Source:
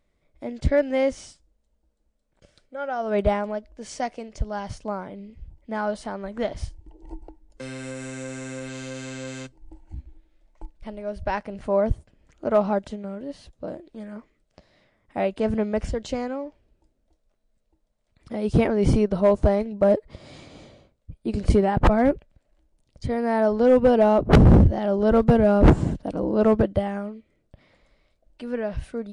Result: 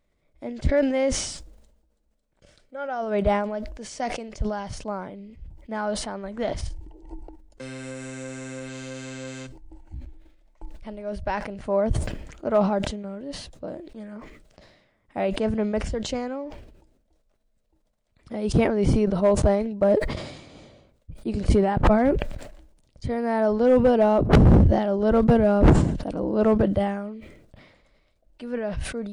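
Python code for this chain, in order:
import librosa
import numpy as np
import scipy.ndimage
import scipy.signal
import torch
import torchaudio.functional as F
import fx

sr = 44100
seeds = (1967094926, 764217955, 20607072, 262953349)

y = fx.sustainer(x, sr, db_per_s=58.0)
y = F.gain(torch.from_numpy(y), -1.5).numpy()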